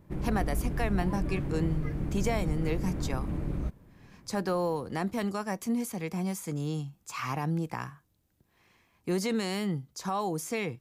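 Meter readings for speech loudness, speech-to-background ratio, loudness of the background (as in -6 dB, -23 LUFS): -33.0 LUFS, 1.5 dB, -34.5 LUFS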